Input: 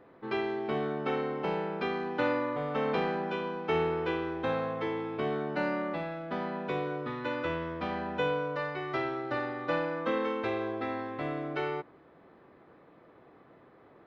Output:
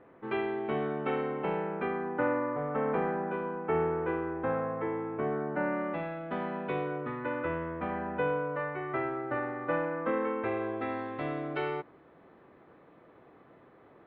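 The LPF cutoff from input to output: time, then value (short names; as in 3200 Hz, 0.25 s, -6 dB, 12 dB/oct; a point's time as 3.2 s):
LPF 24 dB/oct
1.3 s 3000 Hz
2.15 s 1900 Hz
5.6 s 1900 Hz
6.03 s 3100 Hz
6.76 s 3100 Hz
7.27 s 2200 Hz
10.37 s 2200 Hz
11.11 s 3900 Hz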